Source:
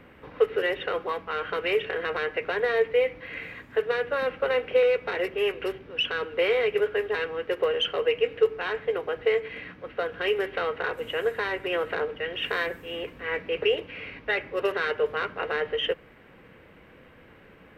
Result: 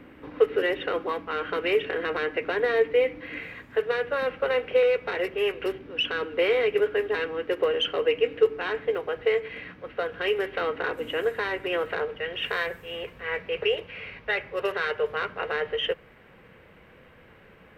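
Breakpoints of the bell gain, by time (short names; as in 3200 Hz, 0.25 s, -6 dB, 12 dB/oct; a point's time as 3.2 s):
bell 290 Hz 0.44 oct
+11 dB
from 3.41 s +0.5 dB
from 5.66 s +8.5 dB
from 8.95 s -0.5 dB
from 10.6 s +9.5 dB
from 11.24 s +2 dB
from 11.86 s -5 dB
from 12.47 s -11.5 dB
from 15.1 s -5.5 dB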